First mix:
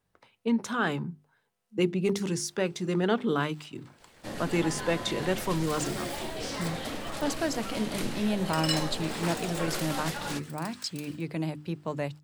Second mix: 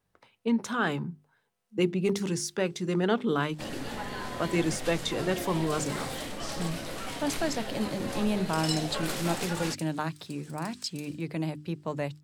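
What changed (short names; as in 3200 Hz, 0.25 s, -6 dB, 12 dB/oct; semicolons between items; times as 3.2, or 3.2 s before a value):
first sound: entry -0.65 s; second sound: add band-pass 7400 Hz, Q 0.72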